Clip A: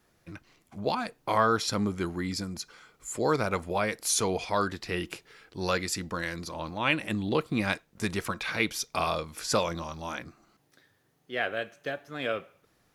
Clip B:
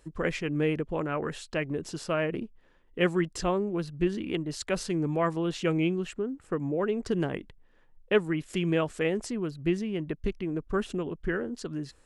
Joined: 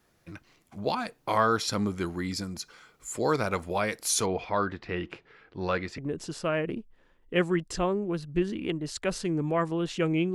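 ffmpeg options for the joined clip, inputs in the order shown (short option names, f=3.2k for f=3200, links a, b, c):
-filter_complex "[0:a]asplit=3[a][b][c];[a]afade=t=out:st=4.25:d=0.02[d];[b]lowpass=2.4k,afade=t=in:st=4.25:d=0.02,afade=t=out:st=5.98:d=0.02[e];[c]afade=t=in:st=5.98:d=0.02[f];[d][e][f]amix=inputs=3:normalize=0,apad=whole_dur=10.34,atrim=end=10.34,atrim=end=5.982[g];[1:a]atrim=start=1.628:end=5.99[h];[g][h]acrossfade=d=0.004:c1=hsin:c2=hsin"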